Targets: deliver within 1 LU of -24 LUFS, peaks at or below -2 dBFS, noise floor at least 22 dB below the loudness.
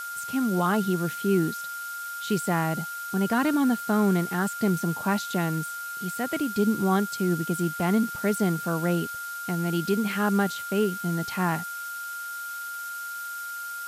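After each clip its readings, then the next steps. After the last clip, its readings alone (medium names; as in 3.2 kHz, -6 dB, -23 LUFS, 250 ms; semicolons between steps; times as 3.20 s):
steady tone 1.4 kHz; tone level -33 dBFS; noise floor -35 dBFS; noise floor target -49 dBFS; loudness -27.0 LUFS; peak level -11.0 dBFS; loudness target -24.0 LUFS
-> band-stop 1.4 kHz, Q 30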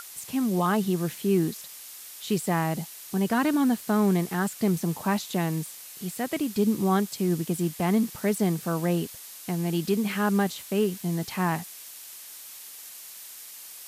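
steady tone not found; noise floor -44 dBFS; noise floor target -49 dBFS
-> noise reduction 6 dB, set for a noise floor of -44 dBFS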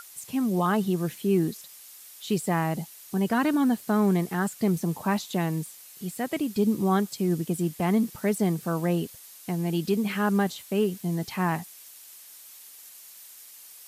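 noise floor -48 dBFS; noise floor target -49 dBFS
-> noise reduction 6 dB, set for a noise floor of -48 dBFS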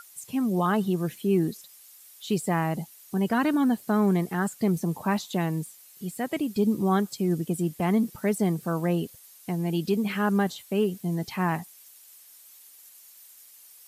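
noise floor -52 dBFS; loudness -27.0 LUFS; peak level -12.0 dBFS; loudness target -24.0 LUFS
-> trim +3 dB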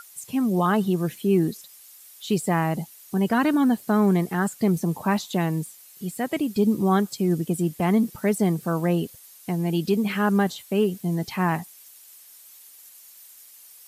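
loudness -24.0 LUFS; peak level -9.0 dBFS; noise floor -49 dBFS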